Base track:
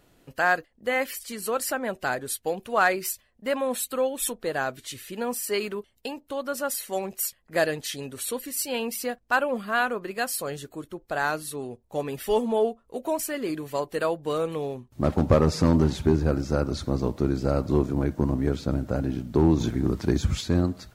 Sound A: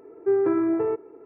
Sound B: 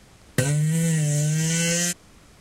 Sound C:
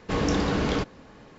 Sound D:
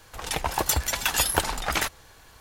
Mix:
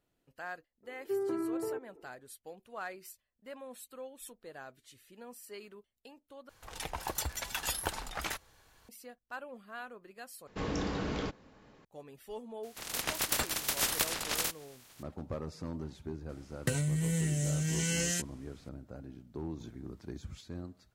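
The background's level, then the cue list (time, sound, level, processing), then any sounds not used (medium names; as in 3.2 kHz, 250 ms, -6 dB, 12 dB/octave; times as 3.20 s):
base track -20 dB
0.83 s: add A -12 dB
6.49 s: replace with D -11.5 dB
10.47 s: replace with C -10 dB
12.63 s: add D -7 dB + spectral peaks clipped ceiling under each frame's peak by 27 dB
16.29 s: add B -9.5 dB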